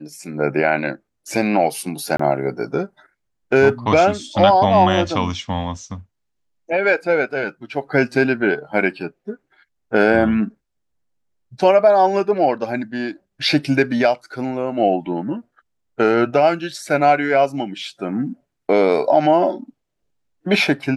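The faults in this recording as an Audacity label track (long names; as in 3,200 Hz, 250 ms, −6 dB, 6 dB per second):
2.170000	2.190000	drop-out 24 ms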